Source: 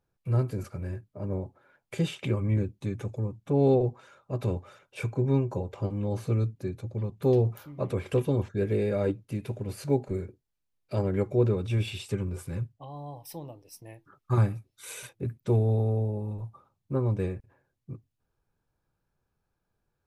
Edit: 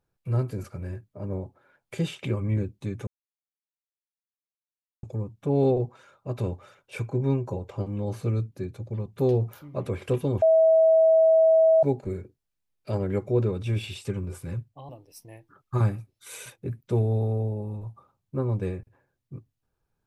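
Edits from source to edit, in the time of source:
3.07 insert silence 1.96 s
8.46–9.87 bleep 646 Hz -14.5 dBFS
12.93–13.46 cut

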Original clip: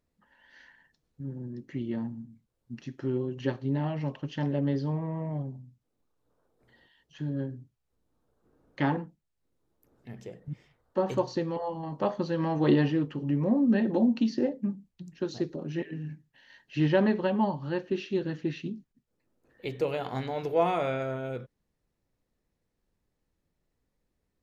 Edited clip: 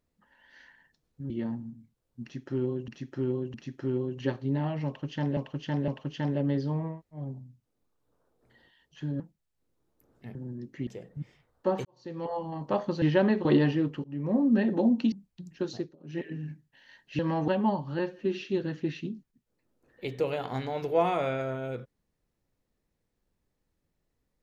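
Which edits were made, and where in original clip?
1.3–1.82 move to 10.18
2.74–3.4 loop, 3 plays
4.06–4.57 loop, 3 plays
5.12–5.37 room tone, crossfade 0.16 s
7.38–9.03 cut
11.16–11.59 fade in quadratic
12.33–12.62 swap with 16.8–17.23
13.21–13.55 fade in linear, from -23.5 dB
14.29–14.73 cut
15.33–15.84 dip -23.5 dB, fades 0.24 s
17.74–18.02 stretch 1.5×

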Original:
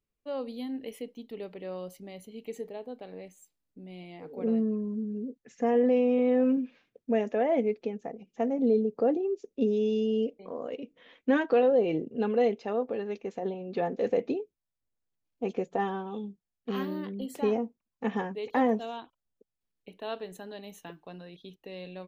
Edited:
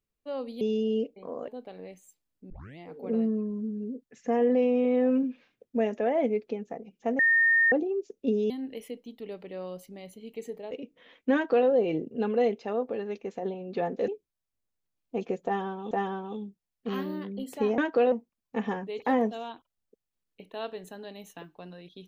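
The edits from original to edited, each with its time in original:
0.61–2.82 swap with 9.84–10.71
3.84 tape start 0.28 s
8.53–9.06 bleep 1830 Hz -18.5 dBFS
11.34–11.68 copy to 17.6
14.08–14.36 cut
15.73–16.19 loop, 2 plays

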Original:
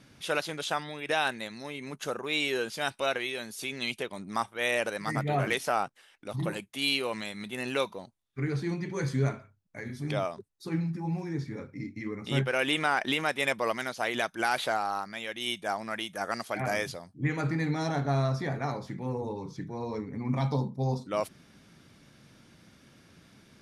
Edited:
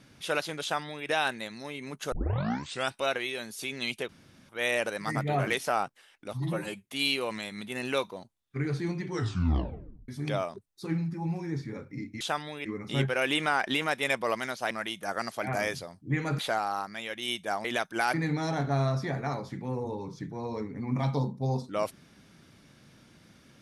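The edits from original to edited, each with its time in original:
0.62–1.07 copy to 12.03
2.12 tape start 0.79 s
4.09–4.49 room tone
6.33–6.68 stretch 1.5×
8.89 tape stop 1.02 s
14.08–14.57 swap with 15.83–17.51

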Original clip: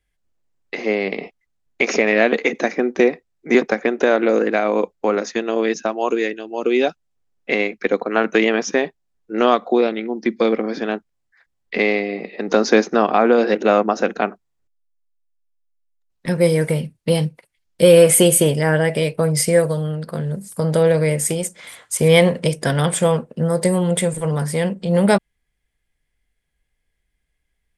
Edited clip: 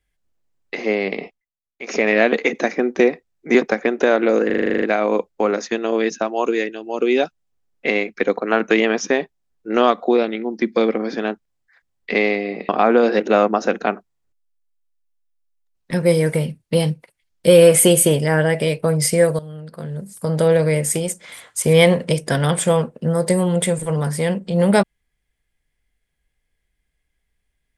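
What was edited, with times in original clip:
1.22–2.05 dip -22 dB, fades 0.25 s
4.46 stutter 0.04 s, 10 plays
12.33–13.04 cut
19.74–20.82 fade in, from -14.5 dB

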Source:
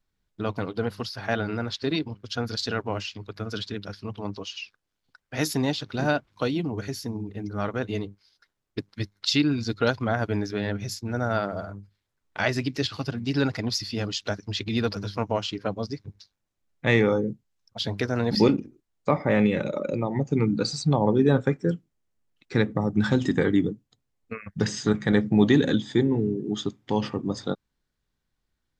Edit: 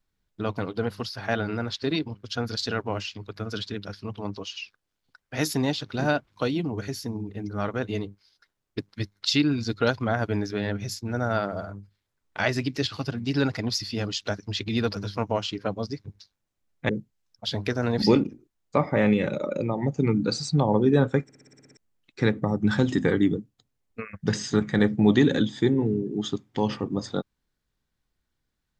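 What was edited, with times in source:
16.89–17.22 cut
21.56 stutter in place 0.06 s, 9 plays

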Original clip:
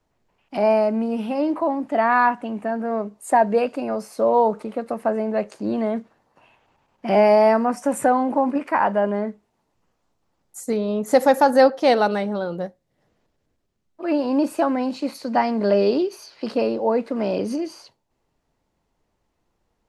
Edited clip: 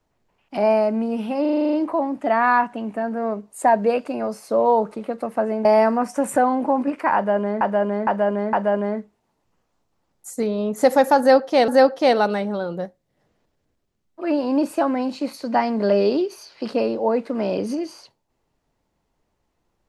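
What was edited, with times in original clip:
1.41 stutter 0.04 s, 9 plays
5.33–7.33 cut
8.83–9.29 loop, 4 plays
11.49–11.98 loop, 2 plays

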